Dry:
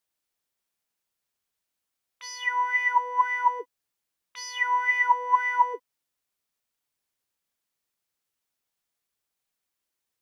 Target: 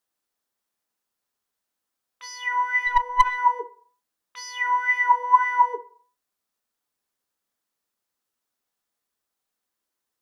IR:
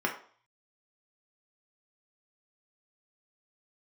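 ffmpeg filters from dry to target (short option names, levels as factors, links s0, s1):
-filter_complex "[0:a]asplit=2[s0][s1];[s1]highshelf=f=3400:t=q:w=1.5:g=-8.5[s2];[1:a]atrim=start_sample=2205,lowpass=3000[s3];[s2][s3]afir=irnorm=-1:irlink=0,volume=0.211[s4];[s0][s4]amix=inputs=2:normalize=0,asplit=3[s5][s6][s7];[s5]afade=t=out:st=2.86:d=0.02[s8];[s6]aeval=exprs='0.473*(cos(1*acos(clip(val(0)/0.473,-1,1)))-cos(1*PI/2))+0.106*(cos(2*acos(clip(val(0)/0.473,-1,1)))-cos(2*PI/2))+0.0299*(cos(3*acos(clip(val(0)/0.473,-1,1)))-cos(3*PI/2))+0.0299*(cos(6*acos(clip(val(0)/0.473,-1,1)))-cos(6*PI/2))+0.015*(cos(8*acos(clip(val(0)/0.473,-1,1)))-cos(8*PI/2))':c=same,afade=t=in:st=2.86:d=0.02,afade=t=out:st=3.37:d=0.02[s9];[s7]afade=t=in:st=3.37:d=0.02[s10];[s8][s9][s10]amix=inputs=3:normalize=0"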